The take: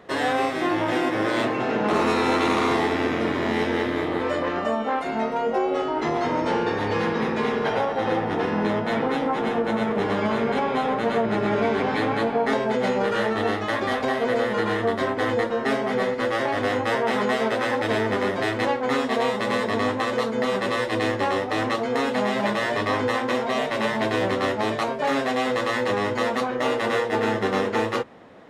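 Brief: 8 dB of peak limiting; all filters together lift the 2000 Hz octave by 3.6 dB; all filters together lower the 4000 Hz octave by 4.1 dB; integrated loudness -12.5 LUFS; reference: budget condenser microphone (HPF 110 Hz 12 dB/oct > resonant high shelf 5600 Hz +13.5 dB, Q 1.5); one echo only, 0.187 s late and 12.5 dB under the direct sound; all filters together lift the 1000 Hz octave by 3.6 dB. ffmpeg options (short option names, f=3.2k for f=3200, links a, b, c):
-af "equalizer=f=1k:t=o:g=4,equalizer=f=2k:t=o:g=5.5,equalizer=f=4k:t=o:g=-5.5,alimiter=limit=-15.5dB:level=0:latency=1,highpass=110,highshelf=f=5.6k:t=q:w=1.5:g=13.5,aecho=1:1:187:0.237,volume=12dB"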